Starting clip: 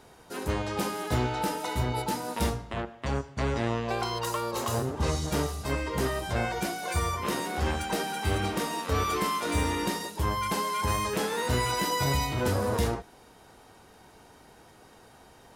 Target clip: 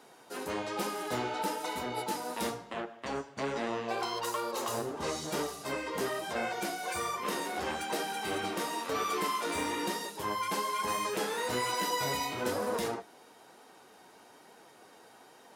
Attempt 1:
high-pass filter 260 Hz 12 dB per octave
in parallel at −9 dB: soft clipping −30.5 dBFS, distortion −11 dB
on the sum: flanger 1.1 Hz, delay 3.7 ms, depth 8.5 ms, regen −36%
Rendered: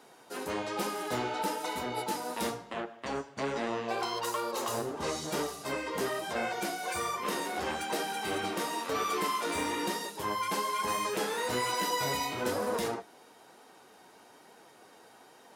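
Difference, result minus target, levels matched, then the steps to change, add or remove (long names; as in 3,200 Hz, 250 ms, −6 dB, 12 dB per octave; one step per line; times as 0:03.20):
soft clipping: distortion −5 dB
change: soft clipping −39.5 dBFS, distortion −5 dB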